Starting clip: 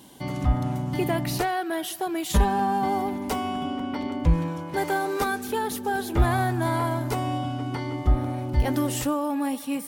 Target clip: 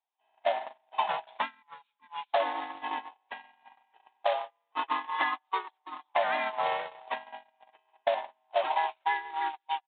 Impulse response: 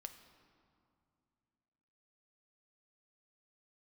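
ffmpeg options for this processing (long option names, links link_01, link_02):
-filter_complex "[0:a]afftfilt=real='real(if(lt(b,1008),b+24*(1-2*mod(floor(b/24),2)),b),0)':imag='imag(if(lt(b,1008),b+24*(1-2*mod(floor(b/24),2)),b),0)':win_size=2048:overlap=0.75,aresample=11025,acrusher=bits=3:mode=log:mix=0:aa=0.000001,aresample=44100,asplit=2[link_01][link_02];[link_02]asetrate=52444,aresample=44100,atempo=0.840896,volume=-2dB[link_03];[link_01][link_03]amix=inputs=2:normalize=0,highpass=820,asplit=2[link_04][link_05];[link_05]aecho=0:1:159:0.112[link_06];[link_04][link_06]amix=inputs=2:normalize=0,agate=range=-44dB:threshold=-25dB:ratio=16:detection=peak,aresample=8000,aresample=44100,acompressor=threshold=-27dB:ratio=6,volume=3dB"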